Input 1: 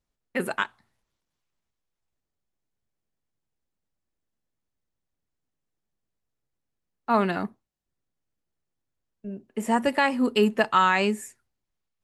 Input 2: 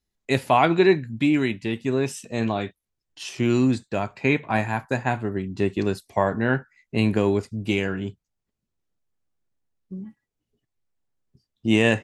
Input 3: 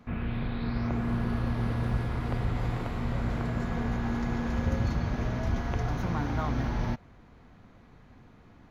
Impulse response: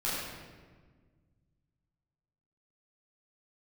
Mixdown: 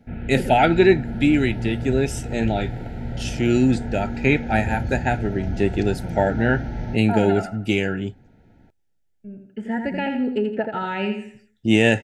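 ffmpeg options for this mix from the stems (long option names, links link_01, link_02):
-filter_complex "[0:a]aphaser=in_gain=1:out_gain=1:delay=1.8:decay=0.59:speed=0.19:type=triangular,lowpass=2400,acompressor=threshold=-17dB:ratio=6,volume=-2.5dB,asplit=2[link_01][link_02];[link_02]volume=-6.5dB[link_03];[1:a]bandreject=frequency=4100:width=17,volume=2.5dB[link_04];[2:a]tiltshelf=frequency=1400:gain=3.5,volume=-2dB[link_05];[link_03]aecho=0:1:83|166|249|332|415:1|0.37|0.137|0.0507|0.0187[link_06];[link_01][link_04][link_05][link_06]amix=inputs=4:normalize=0,asuperstop=centerf=1100:order=20:qfactor=3"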